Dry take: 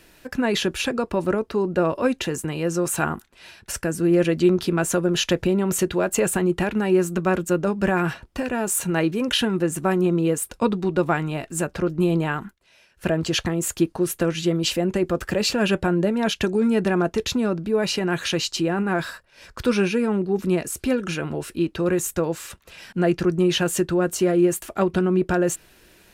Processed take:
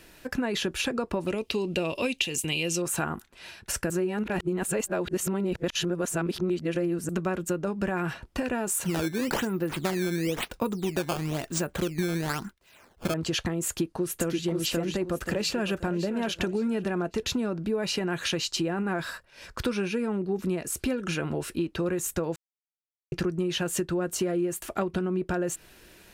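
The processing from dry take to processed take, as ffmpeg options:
ffmpeg -i in.wav -filter_complex "[0:a]asettb=1/sr,asplit=3[link_01][link_02][link_03];[link_01]atrim=end=1.274[link_04];[link_02]atrim=start=1.27:end=2.82,asetpts=PTS-STARTPTS,afade=type=in:duration=0.004:curve=qsin,afade=type=out:start_time=1.546:duration=0.004:curve=qsin,highshelf=frequency=2000:width_type=q:width=3:gain=10[link_05];[link_03]atrim=start=2.816[link_06];[link_04][link_05]acrossfade=duration=0.004:curve1=hsin:curve2=qsin[link_07];[link_07][link_06]acrossfade=duration=0.004:curve1=qsin:curve2=hsin,asettb=1/sr,asplit=3[link_08][link_09][link_10];[link_08]atrim=end=8.844[link_11];[link_09]atrim=start=8.84:end=13.14,asetpts=PTS-STARTPTS,afade=type=in:duration=0.004:curve=qsin,afade=type=out:start_time=4.296:duration=0.004:curve=qsin,acrusher=samples=13:mix=1:aa=0.000001:lfo=1:lforange=20.8:lforate=1[link_12];[link_10]atrim=start=13.136[link_13];[link_11][link_12]acrossfade=duration=0.004:curve1=hsin:curve2=qsin[link_14];[link_14][link_13]acrossfade=duration=0.004:curve1=qsin:curve2=hsin,asplit=2[link_15][link_16];[link_16]afade=type=in:start_time=13.67:duration=0.01,afade=type=out:start_time=14.43:duration=0.01,aecho=0:1:530|1060|1590|2120:0.841395|0.252419|0.0757256|0.0227177[link_17];[link_15][link_17]amix=inputs=2:normalize=0,asplit=2[link_18][link_19];[link_19]afade=type=in:start_time=14.99:duration=0.01,afade=type=out:start_time=15.95:duration=0.01,aecho=0:1:560|1120|1680:0.237137|0.0711412|0.0213424[link_20];[link_18][link_20]amix=inputs=2:normalize=0,asplit=5[link_21][link_22][link_23][link_24][link_25];[link_21]atrim=end=3.902[link_26];[link_22]atrim=start=3.898:end=7.092,asetpts=PTS-STARTPTS,areverse[link_27];[link_23]atrim=start=7.088:end=22.36,asetpts=PTS-STARTPTS,afade=type=out:start_time=15.268:duration=0.004:curve=hsin[link_28];[link_24]atrim=start=22.36:end=23.12,asetpts=PTS-STARTPTS,volume=0[link_29];[link_25]atrim=start=23.12,asetpts=PTS-STARTPTS,afade=type=in:duration=0.004:curve=hsin[link_30];[link_26][link_27]acrossfade=duration=0.004:curve1=hsin:curve2=hsin[link_31];[link_28][link_29][link_30]concat=n=3:v=0:a=1[link_32];[link_31][link_32]acrossfade=duration=0.004:curve1=hsin:curve2=hsin,acompressor=threshold=-25dB:ratio=6" out.wav

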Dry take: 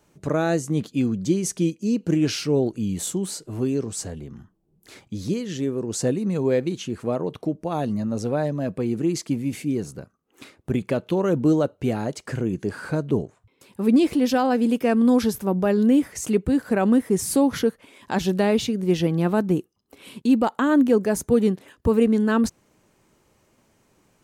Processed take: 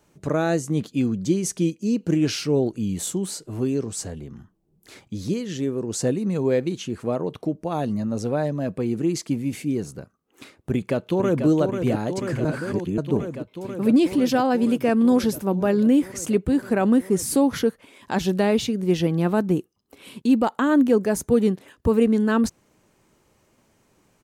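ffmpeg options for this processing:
ffmpeg -i in.wav -filter_complex "[0:a]asplit=2[link_01][link_02];[link_02]afade=type=in:start_time=10.7:duration=0.01,afade=type=out:start_time=11.46:duration=0.01,aecho=0:1:490|980|1470|1960|2450|2940|3430|3920|4410|4900|5390|5880:0.473151|0.402179|0.341852|0.290574|0.246988|0.20994|0.178449|0.151681|0.128929|0.10959|0.0931514|0.0791787[link_03];[link_01][link_03]amix=inputs=2:normalize=0,asplit=3[link_04][link_05][link_06];[link_04]atrim=end=12.452[link_07];[link_05]atrim=start=12.448:end=12.982,asetpts=PTS-STARTPTS,areverse[link_08];[link_06]atrim=start=12.978[link_09];[link_07][link_08]acrossfade=duration=0.004:curve1=hsin:curve2=hsin[link_10];[link_10][link_09]acrossfade=duration=0.004:curve1=hsin:curve2=hsin" out.wav

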